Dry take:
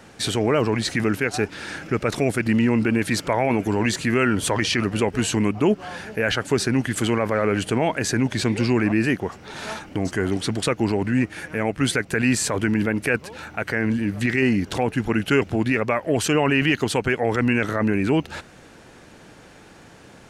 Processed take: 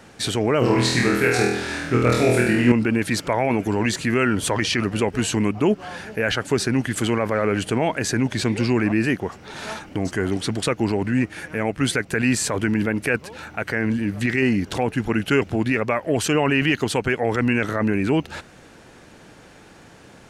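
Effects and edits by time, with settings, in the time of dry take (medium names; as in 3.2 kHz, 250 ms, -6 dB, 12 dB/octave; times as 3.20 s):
0.59–2.72 s: flutter echo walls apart 4.2 m, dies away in 0.83 s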